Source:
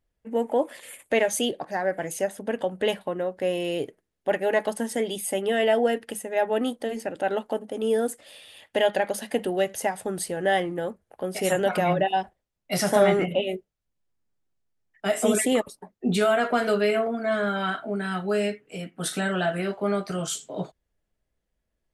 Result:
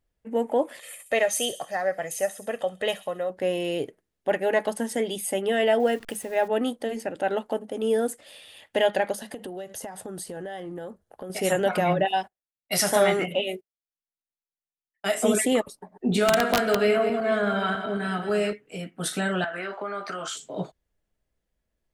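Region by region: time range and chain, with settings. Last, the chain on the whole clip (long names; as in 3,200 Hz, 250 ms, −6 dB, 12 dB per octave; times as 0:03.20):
0:00.79–0:03.30: low-shelf EQ 400 Hz −8 dB + comb filter 1.6 ms, depth 49% + delay with a high-pass on its return 66 ms, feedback 48%, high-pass 5,600 Hz, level −5 dB
0:05.80–0:06.48: hold until the input has moved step −46.5 dBFS + upward compression, threshold −30 dBFS
0:09.14–0:11.30: parametric band 2,300 Hz −7 dB 0.48 octaves + downward compressor 12 to 1, threshold −32 dBFS
0:12.05–0:15.15: noise gate −42 dBFS, range −22 dB + spectral tilt +2 dB per octave
0:15.79–0:18.53: feedback delay that plays each chunk backwards 109 ms, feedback 65%, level −9 dB + high-shelf EQ 8,500 Hz −2 dB + wrap-around overflow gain 11 dB
0:19.44–0:20.37: parametric band 1,400 Hz +11.5 dB 1.6 octaves + downward compressor 12 to 1, threshold −27 dBFS + band-pass filter 290–7,400 Hz
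whole clip: no processing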